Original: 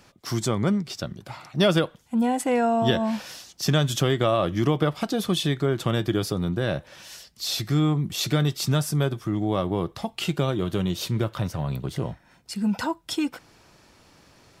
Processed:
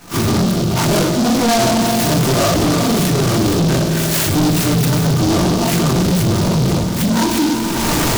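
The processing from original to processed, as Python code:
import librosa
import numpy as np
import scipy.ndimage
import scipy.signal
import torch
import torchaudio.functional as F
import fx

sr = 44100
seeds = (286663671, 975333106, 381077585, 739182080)

p1 = fx.spec_blur(x, sr, span_ms=140.0)
p2 = fx.recorder_agc(p1, sr, target_db=-19.0, rise_db_per_s=29.0, max_gain_db=30)
p3 = fx.low_shelf(p2, sr, hz=93.0, db=-8.0)
p4 = fx.room_shoebox(p3, sr, seeds[0], volume_m3=360.0, walls='furnished', distance_m=7.6)
p5 = fx.spec_box(p4, sr, start_s=0.92, length_s=0.47, low_hz=810.0, high_hz=8500.0, gain_db=-11)
p6 = p5 + fx.echo_swell(p5, sr, ms=81, loudest=5, wet_db=-16.0, dry=0)
p7 = fx.stretch_grains(p6, sr, factor=0.56, grain_ms=41.0)
p8 = 10.0 ** (-19.0 / 20.0) * np.tanh(p7 / 10.0 ** (-19.0 / 20.0))
p9 = fx.noise_mod_delay(p8, sr, seeds[1], noise_hz=4300.0, depth_ms=0.089)
y = F.gain(torch.from_numpy(p9), 7.0).numpy()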